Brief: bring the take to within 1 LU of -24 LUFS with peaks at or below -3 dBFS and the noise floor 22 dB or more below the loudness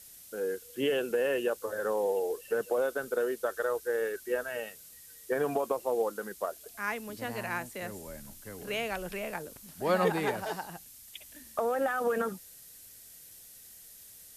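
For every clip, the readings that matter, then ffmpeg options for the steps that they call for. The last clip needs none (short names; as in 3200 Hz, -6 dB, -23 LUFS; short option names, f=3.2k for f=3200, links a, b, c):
noise floor -52 dBFS; noise floor target -55 dBFS; loudness -32.5 LUFS; peak -14.5 dBFS; loudness target -24.0 LUFS
-> -af "afftdn=nr=6:nf=-52"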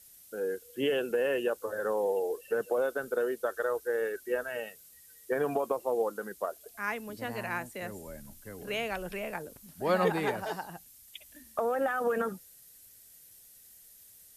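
noise floor -56 dBFS; loudness -32.5 LUFS; peak -14.5 dBFS; loudness target -24.0 LUFS
-> -af "volume=8.5dB"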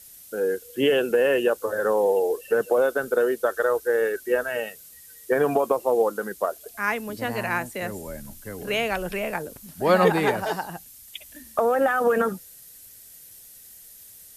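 loudness -24.0 LUFS; peak -6.0 dBFS; noise floor -48 dBFS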